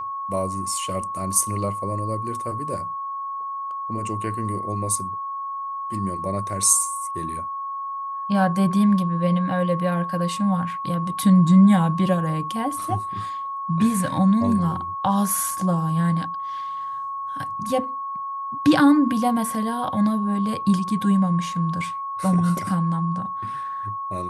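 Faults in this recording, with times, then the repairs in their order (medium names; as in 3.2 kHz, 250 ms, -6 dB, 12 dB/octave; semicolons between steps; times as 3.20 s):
whine 1.1 kHz -27 dBFS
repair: band-stop 1.1 kHz, Q 30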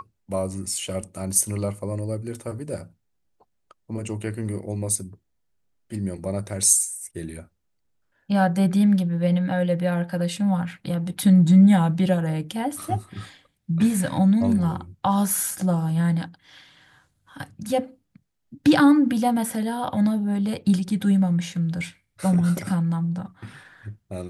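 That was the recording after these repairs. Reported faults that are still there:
nothing left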